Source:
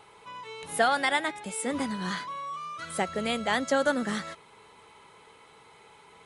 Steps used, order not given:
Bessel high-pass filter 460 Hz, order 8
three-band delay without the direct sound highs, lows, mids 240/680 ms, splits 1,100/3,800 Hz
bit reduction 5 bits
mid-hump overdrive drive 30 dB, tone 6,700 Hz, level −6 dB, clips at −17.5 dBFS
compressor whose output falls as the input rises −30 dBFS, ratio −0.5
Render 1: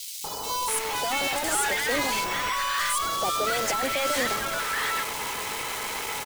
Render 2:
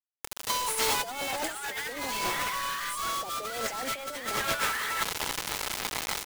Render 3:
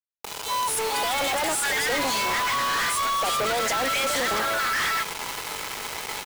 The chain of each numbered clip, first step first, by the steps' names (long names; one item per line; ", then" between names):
compressor whose output falls as the input rises, then Bessel high-pass filter, then mid-hump overdrive, then bit reduction, then three-band delay without the direct sound
Bessel high-pass filter, then mid-hump overdrive, then three-band delay without the direct sound, then bit reduction, then compressor whose output falls as the input rises
Bessel high-pass filter, then compressor whose output falls as the input rises, then three-band delay without the direct sound, then mid-hump overdrive, then bit reduction